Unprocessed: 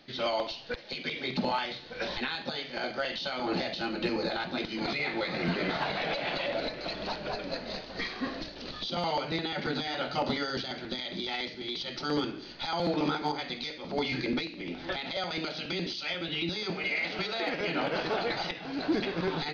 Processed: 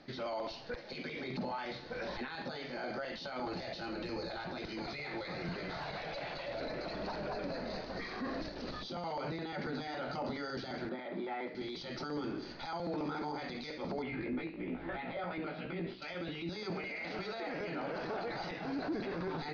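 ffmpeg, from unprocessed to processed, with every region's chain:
-filter_complex "[0:a]asettb=1/sr,asplit=3[a][b][c];[a]atrim=end=3.454[d];[b]atrim=start=3.45:end=6.61,asetpts=PTS-STARTPTS,afade=t=in:d=0.004:c=qsin,afade=t=out:st=3.156:d=0.004:c=qsin,equalizer=f=230:w=1.7:g=-6.5,acrossover=split=150|3000[e][f][g];[f]acompressor=threshold=-37dB:ratio=6:attack=3.2:release=140:knee=2.83:detection=peak[h];[e][h][g]amix=inputs=3:normalize=0[i];[c]atrim=start=6.606[j];[d][i]acrossfade=d=0.004:c1=hsin:c2=qsin[k];[k][j]acrossfade=d=0.004:c1=qsin:c2=hsin,asettb=1/sr,asplit=3[l][m][n];[l]atrim=end=10.894[o];[m]atrim=start=10.89:end=11.55,asetpts=PTS-STARTPTS,afade=t=in:d=0.004:c=qsin,afade=t=out:st=0.656:d=0.004:c=qsin,asplit=2[p][q];[q]highpass=f=720:p=1,volume=9dB,asoftclip=type=tanh:threshold=-22dB[r];[p][r]amix=inputs=2:normalize=0,lowpass=f=1k:p=1,volume=-6dB,highpass=180,lowpass=2.4k[s];[n]atrim=start=11.546[t];[o][s]acrossfade=d=0.004:c1=hsin:c2=qsin[u];[u][t]acrossfade=d=0.004:c1=qsin:c2=hsin,asettb=1/sr,asplit=3[v][w][x];[v]atrim=end=14.024[y];[w]atrim=start=14.02:end=16.02,asetpts=PTS-STARTPTS,afade=t=in:d=0.004:c=qsin,afade=t=out:st=1.996:d=0.004:c=qsin,lowpass=f=3k:w=0.5412,lowpass=f=3k:w=1.3066,flanger=delay=15.5:depth=3:speed=3[z];[x]atrim=start=16.016[aa];[y][z]acrossfade=d=0.004:c1=hsin:c2=qsin[ab];[ab][aa]acrossfade=d=0.004:c1=qsin:c2=hsin,alimiter=level_in=8dB:limit=-24dB:level=0:latency=1:release=18,volume=-8dB,lowpass=5.8k,equalizer=f=3.2k:w=1.5:g=-11,volume=2dB"

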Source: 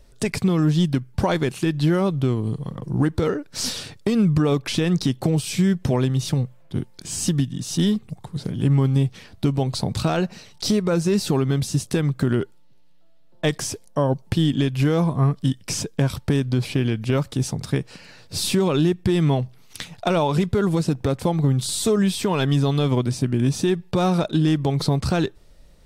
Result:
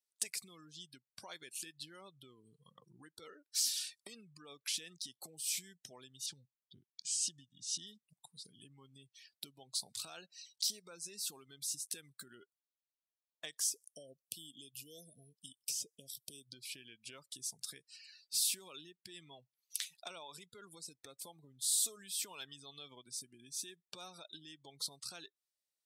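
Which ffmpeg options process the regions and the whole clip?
-filter_complex "[0:a]asettb=1/sr,asplit=3[a][b][c];[a]atrim=end=6.264[d];[b]atrim=start=6.26:end=7.87,asetpts=PTS-STARTPTS,afade=t=in:d=0.004:c=qsin,afade=t=out:st=1.606:d=0.004:c=qsin,agate=range=-33dB:threshold=-44dB:ratio=3:release=100:detection=peak,lowpass=6.2k,equalizer=f=71:w=0.76:g=10[e];[c]atrim=start=7.866[f];[d][e]acrossfade=d=0.004:c1=hsin:c2=qsin[g];[g][f]acrossfade=d=0.004:c1=qsin:c2=hsin,asettb=1/sr,asplit=3[h][i][j];[h]atrim=end=13.694[k];[i]atrim=start=13.69:end=16.53,asetpts=PTS-STARTPTS,afade=t=in:d=0.004:c=qsin,afade=t=out:st=2.836:d=0.004:c=qsin,highshelf=f=7.6k:g=8.5,acrossover=split=2100|5800[l][m][n];[l]acompressor=threshold=-19dB:ratio=4[o];[m]acompressor=threshold=-40dB:ratio=4[p];[n]acompressor=threshold=-43dB:ratio=4[q];[o][p][q]amix=inputs=3:normalize=0,asuperstop=centerf=1300:order=12:qfactor=0.68[r];[j]atrim=start=16.526[s];[k][r]acrossfade=d=0.004:c1=hsin:c2=qsin[t];[t][s]acrossfade=d=0.004:c1=qsin:c2=hsin,acompressor=threshold=-28dB:ratio=5,aderivative,afftdn=nr=25:nf=-54"

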